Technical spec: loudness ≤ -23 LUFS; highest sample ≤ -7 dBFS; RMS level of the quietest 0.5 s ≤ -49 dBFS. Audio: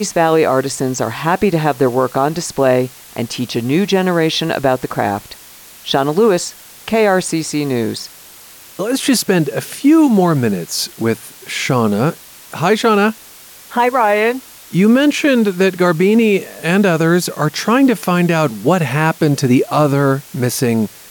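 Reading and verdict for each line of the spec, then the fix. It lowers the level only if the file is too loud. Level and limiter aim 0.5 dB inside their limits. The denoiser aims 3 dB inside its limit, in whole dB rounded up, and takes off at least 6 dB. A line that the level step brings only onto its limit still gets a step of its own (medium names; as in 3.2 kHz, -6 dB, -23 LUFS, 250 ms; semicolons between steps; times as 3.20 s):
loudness -15.0 LUFS: fail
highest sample -2.5 dBFS: fail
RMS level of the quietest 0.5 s -39 dBFS: fail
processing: noise reduction 6 dB, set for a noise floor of -39 dBFS; trim -8.5 dB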